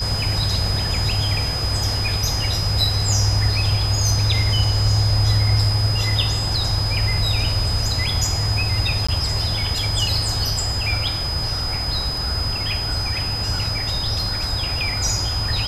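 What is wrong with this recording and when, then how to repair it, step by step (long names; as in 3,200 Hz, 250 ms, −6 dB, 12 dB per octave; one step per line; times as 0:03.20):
whistle 5,000 Hz −24 dBFS
0:09.07–0:09.09: drop-out 15 ms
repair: notch filter 5,000 Hz, Q 30
repair the gap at 0:09.07, 15 ms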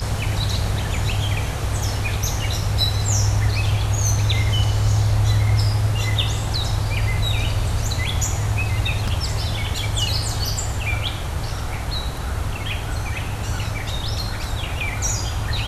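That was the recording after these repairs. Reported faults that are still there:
none of them is left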